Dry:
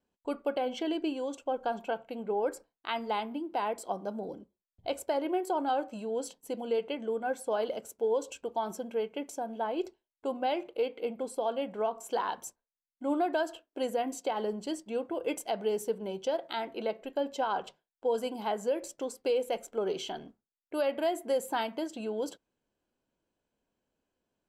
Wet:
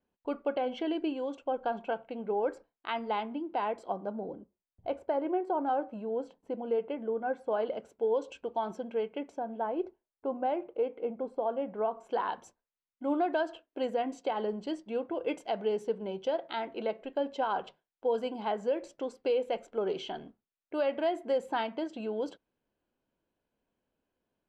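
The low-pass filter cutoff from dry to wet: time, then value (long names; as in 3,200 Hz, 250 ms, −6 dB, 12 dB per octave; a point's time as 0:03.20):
0:03.75 3,100 Hz
0:04.29 1,600 Hz
0:07.15 1,600 Hz
0:08.19 3,300 Hz
0:08.97 3,300 Hz
0:09.84 1,400 Hz
0:11.60 1,400 Hz
0:12.45 3,500 Hz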